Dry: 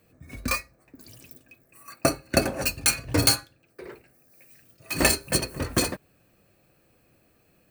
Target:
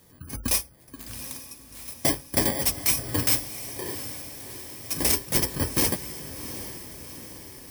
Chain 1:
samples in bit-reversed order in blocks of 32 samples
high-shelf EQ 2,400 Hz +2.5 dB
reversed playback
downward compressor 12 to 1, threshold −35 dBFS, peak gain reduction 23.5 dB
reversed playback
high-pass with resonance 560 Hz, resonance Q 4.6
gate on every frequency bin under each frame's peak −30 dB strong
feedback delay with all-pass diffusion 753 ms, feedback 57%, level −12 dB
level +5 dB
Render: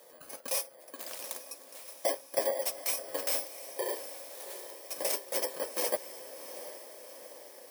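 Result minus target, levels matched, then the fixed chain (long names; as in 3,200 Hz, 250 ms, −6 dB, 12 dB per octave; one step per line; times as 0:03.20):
downward compressor: peak gain reduction +10 dB; 500 Hz band +9.5 dB
samples in bit-reversed order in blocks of 32 samples
high-shelf EQ 2,400 Hz +2.5 dB
reversed playback
downward compressor 12 to 1, threshold −24 dBFS, peak gain reduction 13.5 dB
reversed playback
gate on every frequency bin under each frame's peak −30 dB strong
feedback delay with all-pass diffusion 753 ms, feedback 57%, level −12 dB
level +5 dB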